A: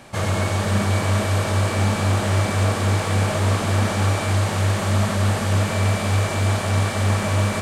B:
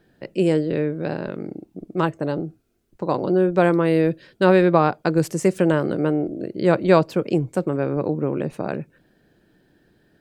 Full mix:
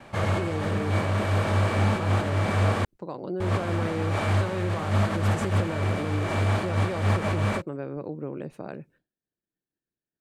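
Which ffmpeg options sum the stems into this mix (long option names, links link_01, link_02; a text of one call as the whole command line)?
ffmpeg -i stem1.wav -i stem2.wav -filter_complex "[0:a]bass=frequency=250:gain=-1,treble=frequency=4000:gain=-11,volume=-2dB,asplit=3[link_01][link_02][link_03];[link_01]atrim=end=2.85,asetpts=PTS-STARTPTS,afade=type=out:start_time=2.846:duration=0.004:curve=hsin[link_04];[link_02]atrim=start=2.85:end=3.4,asetpts=PTS-STARTPTS,volume=0[link_05];[link_03]atrim=start=3.4,asetpts=PTS-STARTPTS,afade=type=in:duration=0.004:curve=hsin[link_06];[link_04][link_05][link_06]concat=n=3:v=0:a=1[link_07];[1:a]alimiter=limit=-12dB:level=0:latency=1:release=130,volume=-10.5dB,asplit=2[link_08][link_09];[link_09]apad=whole_len=335984[link_10];[link_07][link_10]sidechaincompress=threshold=-34dB:ratio=8:attack=12:release=113[link_11];[link_11][link_08]amix=inputs=2:normalize=0,agate=range=-33dB:threshold=-54dB:ratio=3:detection=peak" out.wav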